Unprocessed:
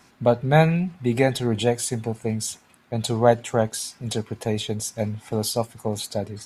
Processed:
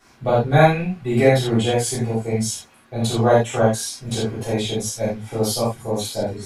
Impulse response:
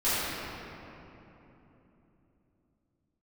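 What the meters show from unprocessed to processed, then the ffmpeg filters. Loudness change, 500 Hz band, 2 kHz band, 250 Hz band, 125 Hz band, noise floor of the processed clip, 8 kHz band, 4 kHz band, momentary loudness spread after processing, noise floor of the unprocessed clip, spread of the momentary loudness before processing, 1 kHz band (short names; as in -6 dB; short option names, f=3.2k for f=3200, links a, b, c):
+3.5 dB, +3.5 dB, +4.0 dB, +3.0 dB, +3.0 dB, -53 dBFS, +3.0 dB, +3.5 dB, 10 LU, -57 dBFS, 11 LU, +4.0 dB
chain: -filter_complex "[1:a]atrim=start_sample=2205,afade=t=out:st=0.17:d=0.01,atrim=end_sample=7938,asetrate=52920,aresample=44100[a];[0:a][a]afir=irnorm=-1:irlink=0,volume=-4.5dB"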